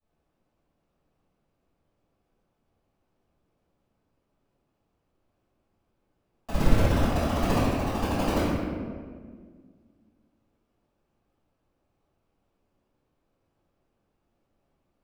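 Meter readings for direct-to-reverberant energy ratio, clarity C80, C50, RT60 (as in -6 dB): -18.0 dB, 0.5 dB, -2.5 dB, 1.8 s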